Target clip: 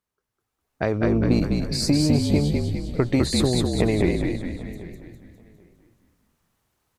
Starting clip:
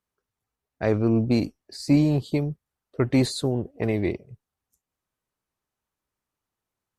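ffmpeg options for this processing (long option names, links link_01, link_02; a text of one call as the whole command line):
ffmpeg -i in.wav -filter_complex "[0:a]acompressor=threshold=-30dB:ratio=5,asplit=2[link_01][link_02];[link_02]asplit=7[link_03][link_04][link_05][link_06][link_07][link_08][link_09];[link_03]adelay=203,afreqshift=-46,volume=-3dB[link_10];[link_04]adelay=406,afreqshift=-92,volume=-8.5dB[link_11];[link_05]adelay=609,afreqshift=-138,volume=-14dB[link_12];[link_06]adelay=812,afreqshift=-184,volume=-19.5dB[link_13];[link_07]adelay=1015,afreqshift=-230,volume=-25.1dB[link_14];[link_08]adelay=1218,afreqshift=-276,volume=-30.6dB[link_15];[link_09]adelay=1421,afreqshift=-322,volume=-36.1dB[link_16];[link_10][link_11][link_12][link_13][link_14][link_15][link_16]amix=inputs=7:normalize=0[link_17];[link_01][link_17]amix=inputs=2:normalize=0,dynaudnorm=framelen=290:gausssize=5:maxgain=11dB,asplit=2[link_18][link_19];[link_19]adelay=788,lowpass=frequency=3300:poles=1,volume=-19dB,asplit=2[link_20][link_21];[link_21]adelay=788,lowpass=frequency=3300:poles=1,volume=0.18[link_22];[link_20][link_22]amix=inputs=2:normalize=0[link_23];[link_18][link_23]amix=inputs=2:normalize=0" out.wav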